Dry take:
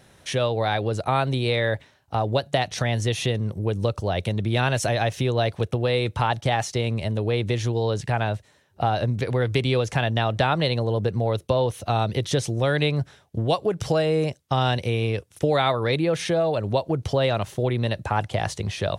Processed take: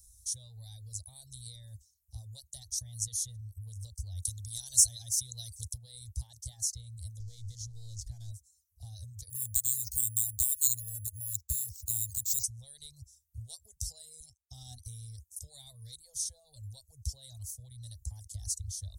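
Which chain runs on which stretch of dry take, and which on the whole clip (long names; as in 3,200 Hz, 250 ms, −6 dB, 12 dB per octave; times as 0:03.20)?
0:04.22–0:05.78: de-essing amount 55% + parametric band 7,300 Hz +11 dB 2.8 octaves
0:07.19–0:08.31: converter with a step at zero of −32 dBFS + low-pass filter 4,500 Hz + parametric band 930 Hz −6.5 dB 0.59 octaves
0:09.30–0:12.44: high-shelf EQ 4,300 Hz +8 dB + bad sample-rate conversion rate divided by 4×, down filtered, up hold
0:14.20–0:14.86: hollow resonant body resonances 240/740/1,300/3,300 Hz, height 15 dB, ringing for 100 ms + expander for the loud parts, over −37 dBFS
whole clip: inverse Chebyshev band-stop filter 160–2,800 Hz, stop band 50 dB; reverb reduction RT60 0.65 s; level +6.5 dB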